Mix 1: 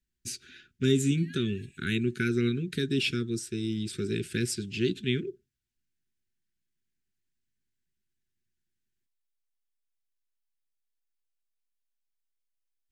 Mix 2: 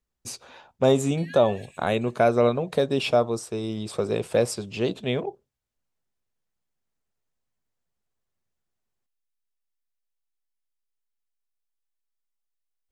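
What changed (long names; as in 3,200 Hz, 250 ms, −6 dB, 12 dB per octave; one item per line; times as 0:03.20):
background +7.0 dB
master: remove Chebyshev band-stop filter 380–1,500 Hz, order 4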